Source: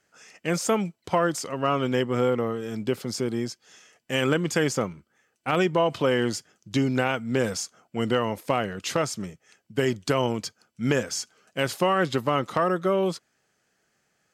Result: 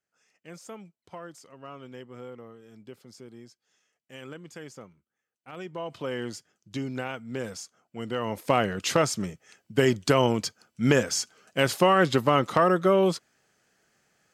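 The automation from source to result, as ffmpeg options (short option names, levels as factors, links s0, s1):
-af "volume=1.33,afade=t=in:st=5.52:d=0.65:silence=0.316228,afade=t=in:st=8.11:d=0.47:silence=0.266073"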